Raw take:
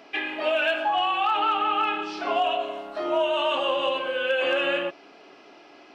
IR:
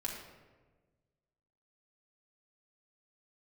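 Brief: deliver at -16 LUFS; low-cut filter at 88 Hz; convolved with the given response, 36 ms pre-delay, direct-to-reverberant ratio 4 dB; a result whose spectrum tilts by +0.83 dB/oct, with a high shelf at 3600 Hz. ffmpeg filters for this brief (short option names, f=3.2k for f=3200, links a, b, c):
-filter_complex "[0:a]highpass=88,highshelf=f=3.6k:g=-6.5,asplit=2[a][b];[1:a]atrim=start_sample=2205,adelay=36[c];[b][c]afir=irnorm=-1:irlink=0,volume=-5.5dB[d];[a][d]amix=inputs=2:normalize=0,volume=7.5dB"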